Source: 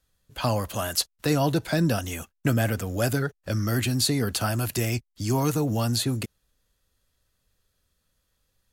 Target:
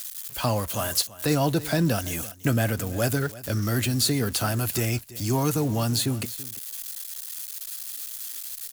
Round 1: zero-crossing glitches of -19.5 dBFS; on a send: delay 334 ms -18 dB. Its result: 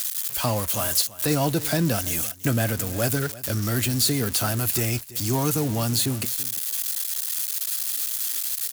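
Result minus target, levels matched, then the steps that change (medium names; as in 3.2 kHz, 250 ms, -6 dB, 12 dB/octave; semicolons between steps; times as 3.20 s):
zero-crossing glitches: distortion +8 dB
change: zero-crossing glitches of -28 dBFS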